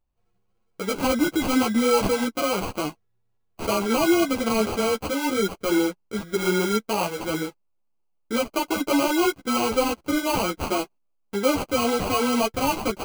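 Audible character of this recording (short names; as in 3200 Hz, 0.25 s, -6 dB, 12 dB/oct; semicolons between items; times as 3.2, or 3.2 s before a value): aliases and images of a low sample rate 1800 Hz, jitter 0%; a shimmering, thickened sound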